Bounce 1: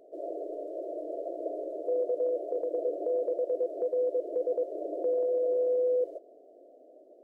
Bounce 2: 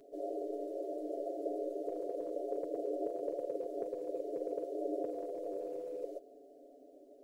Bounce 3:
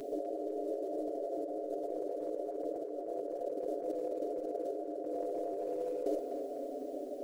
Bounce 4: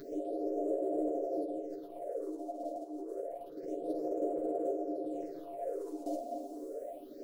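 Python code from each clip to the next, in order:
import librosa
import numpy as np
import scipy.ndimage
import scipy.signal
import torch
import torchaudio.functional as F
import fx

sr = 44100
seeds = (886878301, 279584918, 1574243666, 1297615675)

y1 = fx.peak_eq(x, sr, hz=680.0, db=-12.0, octaves=2.4)
y1 = y1 + 0.96 * np.pad(y1, (int(7.1 * sr / 1000.0), 0))[:len(y1)]
y1 = y1 * 10.0 ** (5.0 / 20.0)
y2 = fx.over_compress(y1, sr, threshold_db=-47.0, ratio=-1.0)
y2 = fx.echo_banded(y2, sr, ms=250, feedback_pct=63, hz=1300.0, wet_db=-4)
y2 = y2 * 10.0 ** (9.0 / 20.0)
y3 = fx.phaser_stages(y2, sr, stages=6, low_hz=110.0, high_hz=4900.0, hz=0.28, feedback_pct=45)
y3 = fx.doubler(y3, sr, ms=13.0, db=-4.5)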